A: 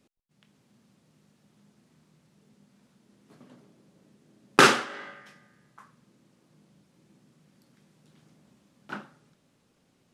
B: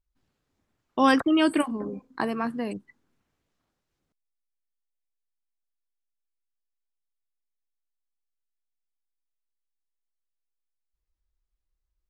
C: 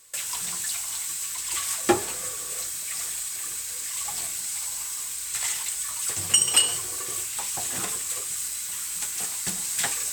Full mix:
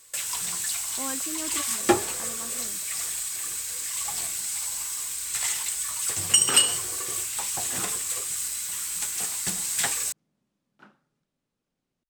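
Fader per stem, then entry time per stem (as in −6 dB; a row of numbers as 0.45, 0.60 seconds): −15.5, −16.5, +0.5 decibels; 1.90, 0.00, 0.00 seconds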